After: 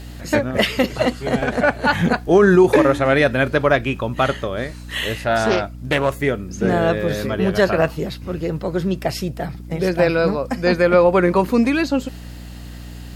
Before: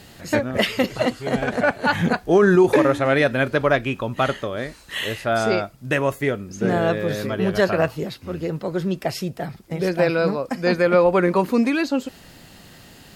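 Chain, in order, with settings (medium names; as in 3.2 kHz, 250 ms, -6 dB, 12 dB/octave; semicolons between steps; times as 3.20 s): hum 60 Hz, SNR 16 dB; 5.24–6.16 s: loudspeaker Doppler distortion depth 0.26 ms; trim +2.5 dB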